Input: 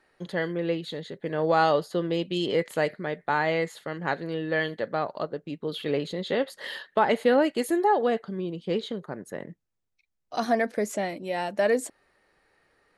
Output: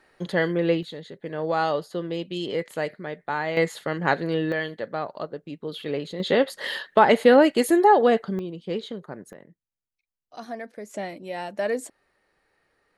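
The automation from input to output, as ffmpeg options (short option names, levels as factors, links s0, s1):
-af "asetnsamples=n=441:p=0,asendcmd='0.83 volume volume -2.5dB;3.57 volume volume 6dB;4.52 volume volume -1.5dB;6.2 volume volume 6dB;8.39 volume volume -1.5dB;9.33 volume volume -11dB;10.94 volume volume -3dB',volume=1.88"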